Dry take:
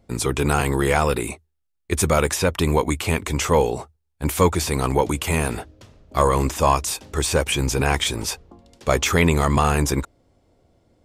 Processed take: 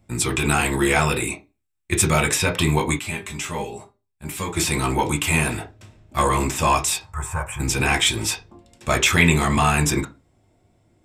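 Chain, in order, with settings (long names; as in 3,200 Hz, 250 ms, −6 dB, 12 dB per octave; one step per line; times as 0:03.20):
0:07.00–0:07.60: drawn EQ curve 110 Hz 0 dB, 300 Hz −24 dB, 1,000 Hz +5 dB, 4,300 Hz −26 dB, 7,600 Hz −11 dB
convolution reverb RT60 0.25 s, pre-delay 3 ms, DRR 2 dB
dynamic equaliser 3,600 Hz, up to +5 dB, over −36 dBFS, Q 0.89
0:02.99–0:04.57: tuned comb filter 200 Hz, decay 0.16 s, harmonics all, mix 80%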